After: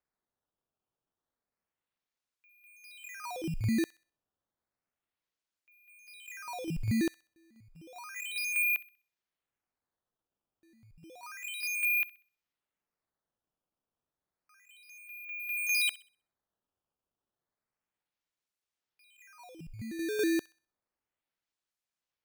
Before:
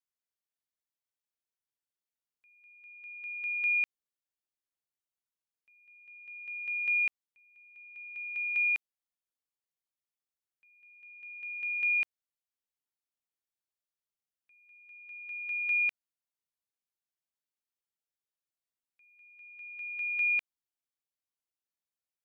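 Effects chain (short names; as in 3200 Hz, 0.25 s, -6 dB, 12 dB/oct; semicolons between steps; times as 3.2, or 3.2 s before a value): HPF 550 Hz 6 dB/oct; decimation with a swept rate 12×, swing 160% 0.31 Hz; on a send: thin delay 64 ms, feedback 33%, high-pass 1500 Hz, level -18 dB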